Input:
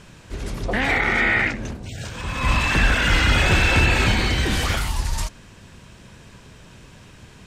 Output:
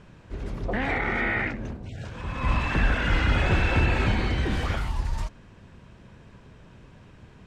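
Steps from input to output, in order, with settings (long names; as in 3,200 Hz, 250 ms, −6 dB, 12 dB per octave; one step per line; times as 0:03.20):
low-pass filter 1,400 Hz 6 dB per octave
level −3.5 dB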